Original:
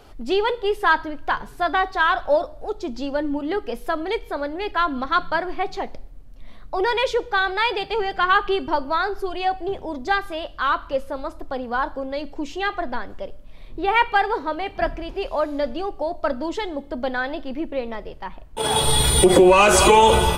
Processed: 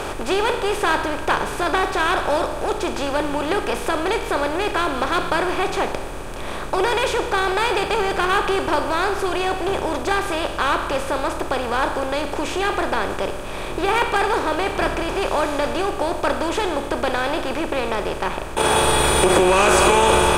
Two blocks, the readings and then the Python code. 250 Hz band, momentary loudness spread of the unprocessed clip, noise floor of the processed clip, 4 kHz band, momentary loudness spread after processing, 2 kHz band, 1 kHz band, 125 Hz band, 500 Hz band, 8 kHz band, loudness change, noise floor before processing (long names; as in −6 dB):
+1.5 dB, 15 LU, −28 dBFS, +1.0 dB, 8 LU, +1.5 dB, +1.0 dB, +0.5 dB, +1.5 dB, can't be measured, +1.0 dB, −40 dBFS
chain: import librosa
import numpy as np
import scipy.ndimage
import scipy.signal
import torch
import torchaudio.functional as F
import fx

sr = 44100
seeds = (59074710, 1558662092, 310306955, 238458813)

y = fx.bin_compress(x, sr, power=0.4)
y = F.gain(torch.from_numpy(y), -6.5).numpy()